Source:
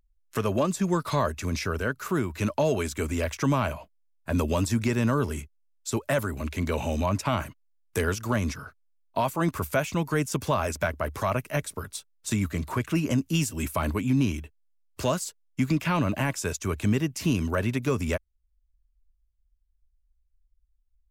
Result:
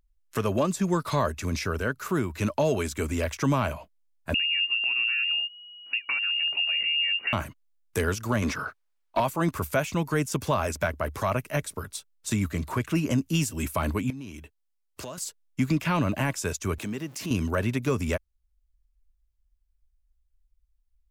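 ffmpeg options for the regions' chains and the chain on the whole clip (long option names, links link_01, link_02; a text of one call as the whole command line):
ffmpeg -i in.wav -filter_complex "[0:a]asettb=1/sr,asplit=3[link_01][link_02][link_03];[link_01]atrim=end=4.344[link_04];[link_02]atrim=start=4.34:end=7.33,asetpts=PTS-STARTPTS,afade=type=in:duration=0.004:curve=qsin,afade=type=out:start_time=2.986:duration=0.004:curve=qsin,aemphasis=mode=reproduction:type=riaa,acompressor=threshold=-25dB:ratio=4:attack=3.2:release=140:knee=1:detection=peak,lowpass=frequency=2500:width_type=q:width=0.5098,lowpass=frequency=2500:width_type=q:width=0.6013,lowpass=frequency=2500:width_type=q:width=0.9,lowpass=frequency=2500:width_type=q:width=2.563,afreqshift=-2900[link_05];[link_03]atrim=start=7.326[link_06];[link_04][link_05]acrossfade=duration=0.004:curve1=hsin:curve2=qsin[link_07];[link_07][link_06]acrossfade=duration=0.004:curve1=qsin:curve2=hsin,asettb=1/sr,asplit=3[link_08][link_09][link_10];[link_08]atrim=end=8.424[link_11];[link_09]atrim=start=8.42:end=9.2,asetpts=PTS-STARTPTS,afade=type=in:duration=0.004:curve=qsin,afade=type=out:start_time=0.776:duration=0.004:curve=qsin,highshelf=frequency=7900:gain=5,asplit=2[link_12][link_13];[link_13]highpass=frequency=720:poles=1,volume=19dB,asoftclip=type=tanh:threshold=-14.5dB[link_14];[link_12][link_14]amix=inputs=2:normalize=0,lowpass=frequency=1700:poles=1,volume=-6dB[link_15];[link_10]atrim=start=9.196[link_16];[link_11][link_15]acrossfade=duration=0.004:curve1=hsin:curve2=qsin[link_17];[link_17][link_16]acrossfade=duration=0.004:curve1=qsin:curve2=hsin,asettb=1/sr,asplit=3[link_18][link_19][link_20];[link_18]atrim=end=14.104[link_21];[link_19]atrim=start=14.1:end=15.18,asetpts=PTS-STARTPTS,afade=type=in:duration=0.004:curve=qsin,afade=type=out:start_time=1.076:duration=0.004:curve=qsin,acompressor=threshold=-33dB:ratio=8:attack=3.2:release=140:knee=1:detection=peak,lowshelf=frequency=120:gain=-8.5[link_22];[link_20]atrim=start=15.176[link_23];[link_21][link_22]acrossfade=duration=0.004:curve1=hsin:curve2=qsin[link_24];[link_24][link_23]acrossfade=duration=0.004:curve1=qsin:curve2=hsin,asettb=1/sr,asplit=3[link_25][link_26][link_27];[link_25]atrim=end=16.784[link_28];[link_26]atrim=start=16.78:end=17.31,asetpts=PTS-STARTPTS,afade=type=in:duration=0.004:curve=qsin,afade=type=out:start_time=0.526:duration=0.004:curve=qsin,aeval=exprs='val(0)+0.5*0.00794*sgn(val(0))':channel_layout=same,highpass=170,acompressor=threshold=-34dB:ratio=2:attack=3.2:release=140:knee=1:detection=peak[link_29];[link_27]atrim=start=17.306[link_30];[link_28][link_29]acrossfade=duration=0.004:curve1=hsin:curve2=qsin[link_31];[link_31][link_30]acrossfade=duration=0.004:curve1=qsin:curve2=hsin" out.wav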